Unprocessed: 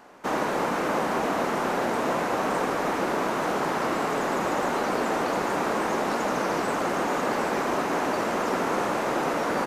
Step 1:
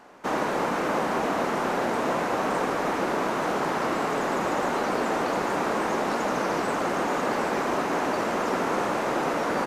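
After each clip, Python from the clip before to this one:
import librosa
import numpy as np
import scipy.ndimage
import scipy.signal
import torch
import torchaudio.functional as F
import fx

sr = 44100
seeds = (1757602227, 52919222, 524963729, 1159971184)

y = fx.high_shelf(x, sr, hz=11000.0, db=-5.0)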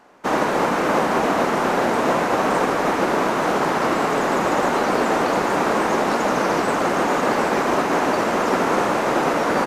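y = fx.upward_expand(x, sr, threshold_db=-41.0, expansion=1.5)
y = y * librosa.db_to_amplitude(7.5)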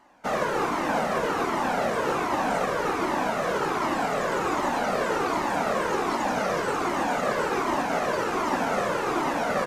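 y = fx.comb_cascade(x, sr, direction='falling', hz=1.3)
y = y * librosa.db_to_amplitude(-1.5)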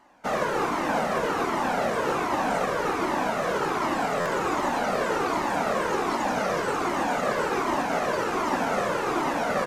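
y = fx.buffer_glitch(x, sr, at_s=(4.2,), block=512, repeats=4)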